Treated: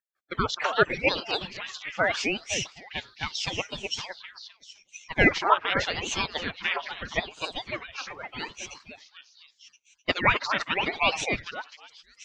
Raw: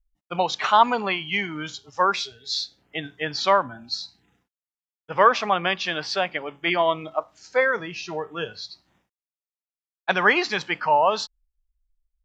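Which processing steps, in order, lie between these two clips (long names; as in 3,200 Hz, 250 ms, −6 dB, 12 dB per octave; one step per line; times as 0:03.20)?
harmonic-percussive split with one part muted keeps percussive
echo through a band-pass that steps 256 ms, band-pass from 960 Hz, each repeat 0.7 octaves, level −3 dB
ring modulator whose carrier an LFO sweeps 940 Hz, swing 85%, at 0.81 Hz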